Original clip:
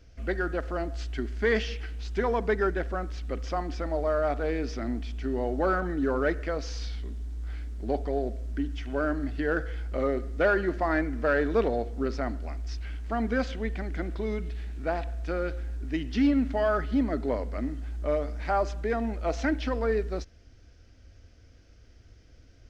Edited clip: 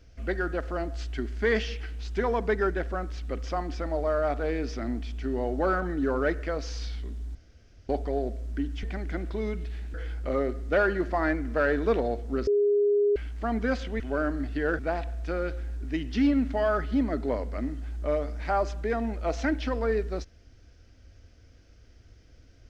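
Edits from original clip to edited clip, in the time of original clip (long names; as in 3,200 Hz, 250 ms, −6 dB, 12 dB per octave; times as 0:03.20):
0:07.35–0:07.89: fill with room tone
0:08.83–0:09.62: swap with 0:13.68–0:14.79
0:12.15–0:12.84: beep over 410 Hz −19.5 dBFS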